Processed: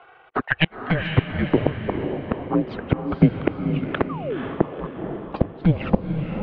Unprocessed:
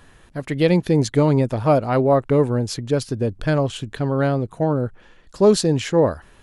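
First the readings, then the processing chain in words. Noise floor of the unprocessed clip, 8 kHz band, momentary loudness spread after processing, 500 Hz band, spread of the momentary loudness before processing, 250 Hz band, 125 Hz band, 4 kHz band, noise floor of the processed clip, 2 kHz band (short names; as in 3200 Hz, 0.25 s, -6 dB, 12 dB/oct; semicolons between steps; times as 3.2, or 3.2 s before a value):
-51 dBFS, under -40 dB, 9 LU, -8.5 dB, 8 LU, -2.0 dB, -2.5 dB, -2.5 dB, -51 dBFS, +4.5 dB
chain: HPF 63 Hz 24 dB/oct; transient shaper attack +11 dB, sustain -10 dB; painted sound fall, 4.09–4.46, 470–1600 Hz -6 dBFS; high-pass sweep 970 Hz -> 360 Hz, 0.8–4.71; in parallel at -9 dB: companded quantiser 6-bit; on the sum: high-pass sweep 93 Hz -> 810 Hz, 0.67–2.16; flipped gate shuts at -2 dBFS, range -34 dB; envelope flanger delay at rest 2.9 ms, full sweep at -16 dBFS; on a send: diffused feedback echo 0.487 s, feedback 43%, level -6 dB; on the sum: mistuned SSB -320 Hz 370–3400 Hz; gain +2.5 dB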